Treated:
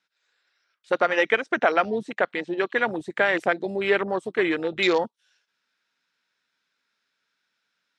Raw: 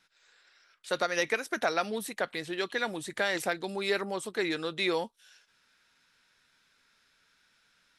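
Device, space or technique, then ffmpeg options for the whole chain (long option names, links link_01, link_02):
over-cleaned archive recording: -filter_complex "[0:a]highpass=180,lowpass=6900,afwtdn=0.0178,asettb=1/sr,asplit=3[link_01][link_02][link_03];[link_01]atrim=end=0.994[link_04];[link_02]atrim=start=0.99:end=2.9,asetpts=PTS-STARTPTS,afade=type=in:duration=0.004:curve=qsin,afade=type=out:start_time=1.906:duration=0.004:curve=qsin,lowpass=frequency=8300:width=0.5412,lowpass=frequency=8300:width=1.3066[link_05];[link_03]atrim=start=2.896[link_06];[link_04][link_05]acrossfade=duration=0.004:curve1=hsin:curve2=qsin[link_07];[link_07][link_06]acrossfade=duration=0.004:curve1=qsin:curve2=hsin,volume=8.5dB"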